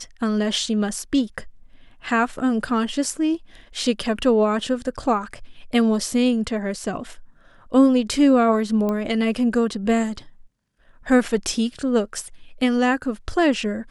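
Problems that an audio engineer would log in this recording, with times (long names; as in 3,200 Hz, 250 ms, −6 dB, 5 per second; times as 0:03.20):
0:08.89: click −14 dBFS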